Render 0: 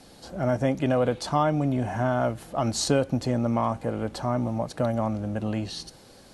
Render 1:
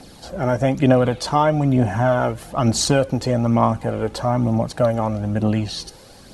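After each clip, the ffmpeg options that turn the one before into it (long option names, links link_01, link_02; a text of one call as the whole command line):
ffmpeg -i in.wav -af "aphaser=in_gain=1:out_gain=1:delay=2.5:decay=0.41:speed=1.1:type=triangular,volume=6dB" out.wav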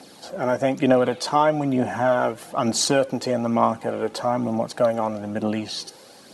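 ffmpeg -i in.wav -af "highpass=240,volume=-1dB" out.wav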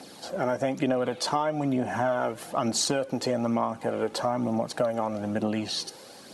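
ffmpeg -i in.wav -af "acompressor=threshold=-23dB:ratio=5" out.wav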